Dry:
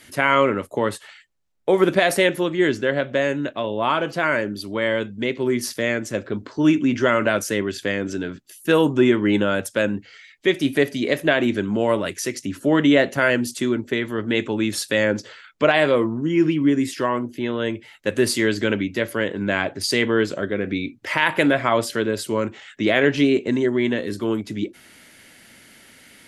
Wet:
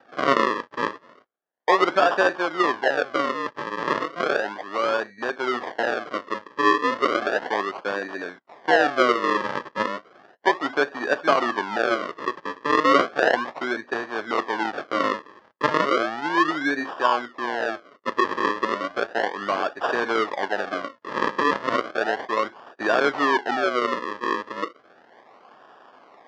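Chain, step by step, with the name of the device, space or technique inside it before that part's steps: circuit-bent sampling toy (decimation with a swept rate 41×, swing 100% 0.34 Hz; cabinet simulation 490–4400 Hz, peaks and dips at 740 Hz +4 dB, 1.1 kHz +6 dB, 1.7 kHz +6 dB, 2.5 kHz -6 dB, 3.9 kHz -6 dB)

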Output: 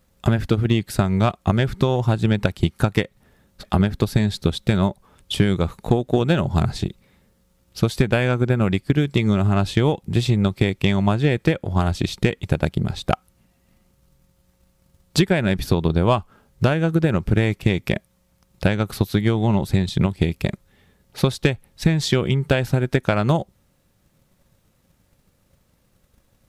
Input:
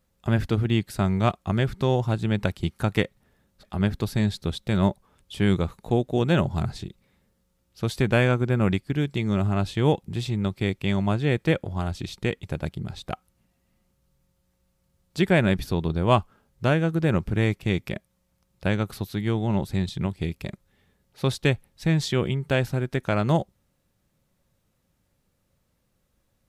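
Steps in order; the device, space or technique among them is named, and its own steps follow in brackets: drum-bus smash (transient shaper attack +8 dB, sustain 0 dB; compression 10:1, threshold -20 dBFS, peak gain reduction 12 dB; saturation -11.5 dBFS, distortion -20 dB); trim +8 dB

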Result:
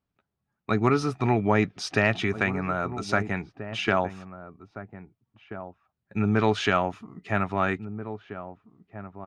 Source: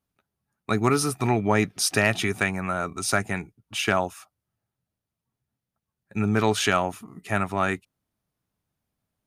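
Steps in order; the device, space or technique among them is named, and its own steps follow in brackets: shout across a valley (distance through air 170 m; echo from a far wall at 280 m, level -12 dB)

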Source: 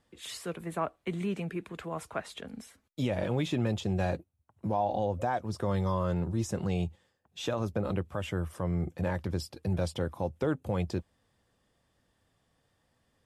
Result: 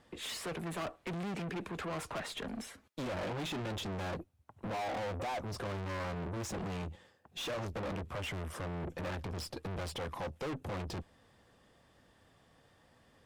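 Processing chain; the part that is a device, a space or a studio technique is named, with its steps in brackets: 9.96–10.45 s: bass shelf 490 Hz -5.5 dB; tube preamp driven hard (valve stage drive 46 dB, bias 0.4; bass shelf 170 Hz -5 dB; treble shelf 5.1 kHz -8 dB); trim +11 dB

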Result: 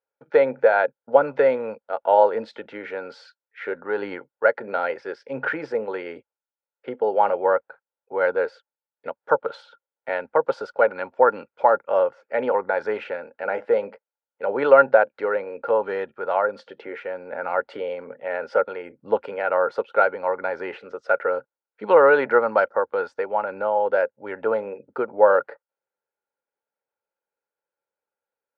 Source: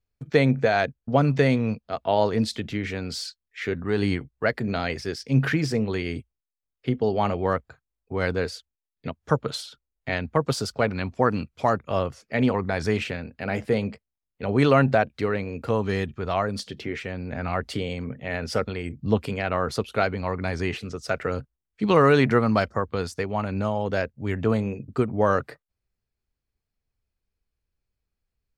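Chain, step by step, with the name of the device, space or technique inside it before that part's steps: tin-can telephone (band-pass 440–2200 Hz; small resonant body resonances 540/860/1400 Hz, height 15 dB, ringing for 25 ms); trim -3.5 dB

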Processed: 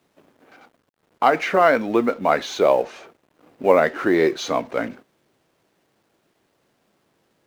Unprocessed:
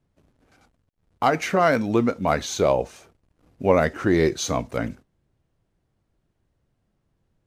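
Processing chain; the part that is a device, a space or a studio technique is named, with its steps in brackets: phone line with mismatched companding (band-pass 310–3400 Hz; companding laws mixed up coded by mu); trim +3.5 dB

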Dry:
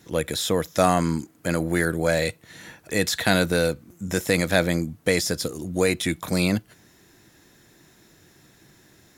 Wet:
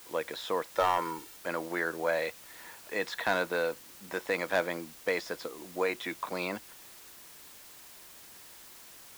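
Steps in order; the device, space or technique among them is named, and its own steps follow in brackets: drive-through speaker (band-pass 420–2900 Hz; peaking EQ 1 kHz +8.5 dB 0.51 oct; hard clipper -11.5 dBFS, distortion -17 dB; white noise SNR 17 dB); 0.76–1.37 s: comb 2.2 ms, depth 61%; trim -6.5 dB

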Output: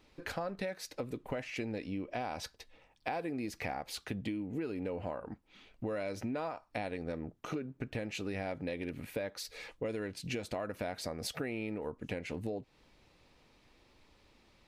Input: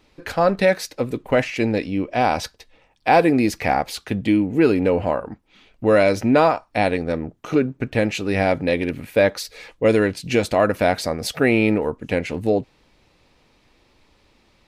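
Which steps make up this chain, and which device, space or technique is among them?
serial compression, peaks first (compression, threshold -23 dBFS, peak gain reduction 12 dB; compression 1.5:1, threshold -36 dBFS, peak gain reduction 6 dB); trim -6.5 dB

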